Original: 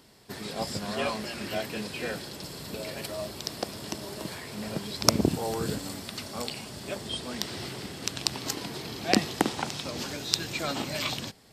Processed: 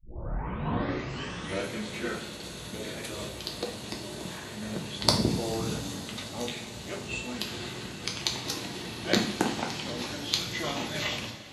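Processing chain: tape start-up on the opening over 1.73 s; formant shift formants -3 st; two-slope reverb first 0.48 s, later 4.6 s, from -18 dB, DRR 0 dB; trim -3 dB

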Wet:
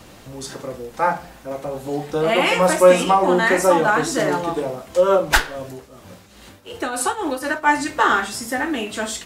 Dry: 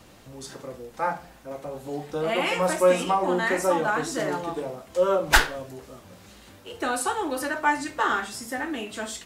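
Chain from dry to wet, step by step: 5.00–7.72 s: tremolo triangle 1.6 Hz -> 5.2 Hz, depth 70%; trim +7.5 dB

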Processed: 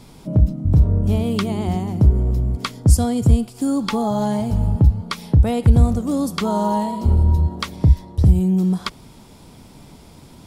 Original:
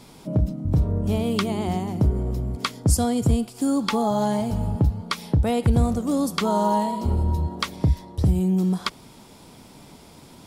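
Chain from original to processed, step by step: bass shelf 140 Hz +10 dB

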